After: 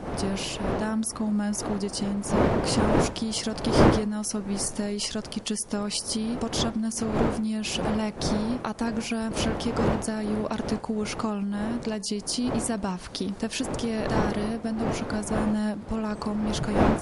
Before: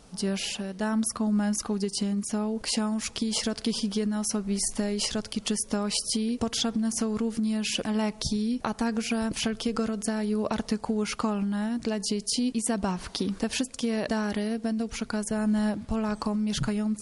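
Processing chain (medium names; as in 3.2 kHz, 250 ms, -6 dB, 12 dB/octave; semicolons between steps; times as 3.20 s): wind noise 580 Hz -29 dBFS; trim -1 dB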